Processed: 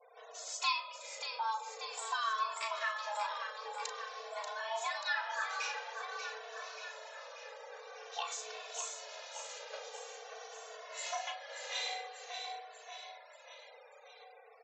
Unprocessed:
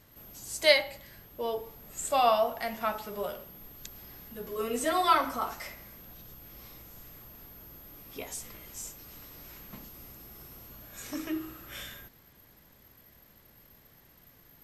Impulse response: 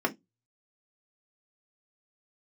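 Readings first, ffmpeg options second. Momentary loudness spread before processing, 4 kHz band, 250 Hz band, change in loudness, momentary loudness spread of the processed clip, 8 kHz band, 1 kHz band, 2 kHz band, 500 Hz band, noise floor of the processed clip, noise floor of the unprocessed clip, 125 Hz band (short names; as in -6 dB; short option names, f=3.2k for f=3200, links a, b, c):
23 LU, -4.5 dB, under -40 dB, -9.0 dB, 15 LU, -2.5 dB, -5.5 dB, -2.5 dB, -13.5 dB, -57 dBFS, -59 dBFS, under -40 dB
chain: -filter_complex "[0:a]afreqshift=430,acompressor=threshold=-37dB:ratio=6,lowshelf=f=470:g=-7,asplit=2[a][b];[b]adelay=36,volume=-8.5dB[c];[a][c]amix=inputs=2:normalize=0,asplit=2[d][e];[e]aecho=0:1:586|1172|1758|2344|2930|3516|4102|4688:0.447|0.268|0.161|0.0965|0.0579|0.0347|0.0208|0.0125[f];[d][f]amix=inputs=2:normalize=0,aresample=16000,aresample=44100,adynamicequalizer=threshold=0.00112:dfrequency=3900:dqfactor=2.4:tfrequency=3900:tqfactor=2.4:attack=5:release=100:ratio=0.375:range=2:mode=boostabove:tftype=bell,afftfilt=real='re*gte(hypot(re,im),0.00126)':imag='im*gte(hypot(re,im),0.00126)':win_size=1024:overlap=0.75,asplit=2[g][h];[h]adelay=2.2,afreqshift=-0.48[i];[g][i]amix=inputs=2:normalize=1,volume=6.5dB"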